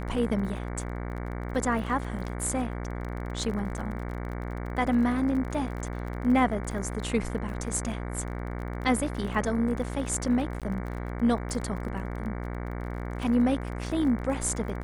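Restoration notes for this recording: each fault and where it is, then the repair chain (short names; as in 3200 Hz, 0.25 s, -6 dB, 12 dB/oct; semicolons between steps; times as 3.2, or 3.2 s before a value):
buzz 60 Hz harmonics 38 -34 dBFS
crackle 31/s -36 dBFS
10.6–10.62 gap 17 ms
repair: de-click; de-hum 60 Hz, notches 38; interpolate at 10.6, 17 ms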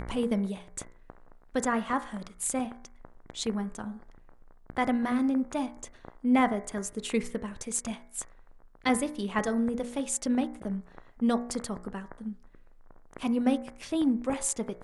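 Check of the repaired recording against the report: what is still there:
none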